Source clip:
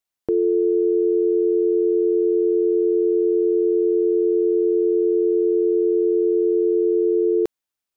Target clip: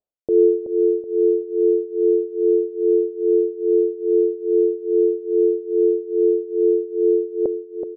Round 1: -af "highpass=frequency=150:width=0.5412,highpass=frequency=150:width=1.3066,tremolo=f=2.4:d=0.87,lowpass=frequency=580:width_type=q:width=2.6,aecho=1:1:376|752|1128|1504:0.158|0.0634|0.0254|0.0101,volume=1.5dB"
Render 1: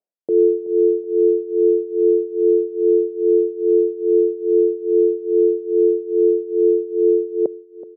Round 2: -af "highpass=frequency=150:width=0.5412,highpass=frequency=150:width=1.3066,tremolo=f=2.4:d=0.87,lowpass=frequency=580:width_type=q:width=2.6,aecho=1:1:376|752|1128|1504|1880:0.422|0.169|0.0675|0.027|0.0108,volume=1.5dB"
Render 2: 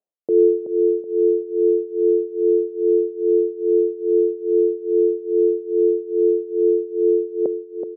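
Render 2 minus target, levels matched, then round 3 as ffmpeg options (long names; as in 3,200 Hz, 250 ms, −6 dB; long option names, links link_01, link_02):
125 Hz band −3.5 dB
-af "tremolo=f=2.4:d=0.87,lowpass=frequency=580:width_type=q:width=2.6,aecho=1:1:376|752|1128|1504|1880:0.422|0.169|0.0675|0.027|0.0108,volume=1.5dB"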